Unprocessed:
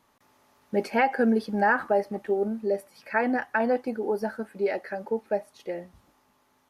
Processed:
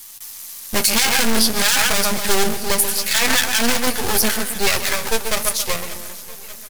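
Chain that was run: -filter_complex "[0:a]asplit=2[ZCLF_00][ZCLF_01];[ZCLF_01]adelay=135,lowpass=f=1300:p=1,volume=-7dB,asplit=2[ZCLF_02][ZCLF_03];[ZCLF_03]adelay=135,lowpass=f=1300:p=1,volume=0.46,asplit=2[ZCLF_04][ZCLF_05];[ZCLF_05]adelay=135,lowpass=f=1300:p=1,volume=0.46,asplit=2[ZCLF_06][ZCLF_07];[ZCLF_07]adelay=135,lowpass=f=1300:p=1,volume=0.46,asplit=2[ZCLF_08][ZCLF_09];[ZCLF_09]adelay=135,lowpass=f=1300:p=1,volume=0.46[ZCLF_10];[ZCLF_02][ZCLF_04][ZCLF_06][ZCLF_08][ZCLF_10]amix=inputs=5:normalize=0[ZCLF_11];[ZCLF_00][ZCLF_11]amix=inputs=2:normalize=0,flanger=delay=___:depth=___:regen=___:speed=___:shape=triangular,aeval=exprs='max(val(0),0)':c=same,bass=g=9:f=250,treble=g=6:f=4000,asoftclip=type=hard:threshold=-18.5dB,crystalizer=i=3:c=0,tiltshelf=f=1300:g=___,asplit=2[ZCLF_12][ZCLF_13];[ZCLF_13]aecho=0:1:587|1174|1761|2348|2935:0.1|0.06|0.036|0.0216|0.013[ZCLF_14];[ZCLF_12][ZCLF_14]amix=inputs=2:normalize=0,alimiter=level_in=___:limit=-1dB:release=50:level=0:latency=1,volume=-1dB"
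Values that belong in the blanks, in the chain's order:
9.2, 5.3, 2, 0.46, -9.5, 18dB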